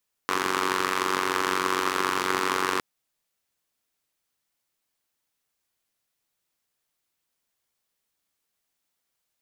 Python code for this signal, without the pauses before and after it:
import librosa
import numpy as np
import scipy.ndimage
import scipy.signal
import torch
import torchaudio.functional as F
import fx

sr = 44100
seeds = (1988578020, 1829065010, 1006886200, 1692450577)

y = fx.engine_four(sr, seeds[0], length_s=2.51, rpm=2800, resonances_hz=(380.0, 1100.0))